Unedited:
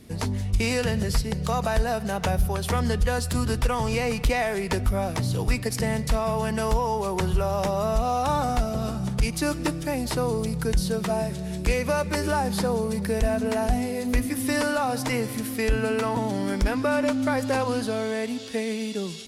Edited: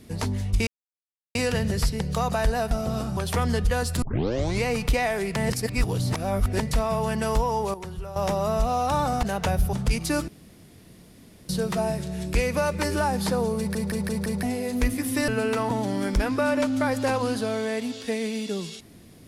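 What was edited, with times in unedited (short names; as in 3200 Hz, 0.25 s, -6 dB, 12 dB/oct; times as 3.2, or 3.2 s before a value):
0.67 insert silence 0.68 s
2.03–2.53 swap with 8.59–9.05
3.38 tape start 0.61 s
4.72–5.96 reverse
7.1–7.52 gain -11.5 dB
9.6–10.81 room tone
12.9 stutter in place 0.17 s, 5 plays
14.6–15.74 cut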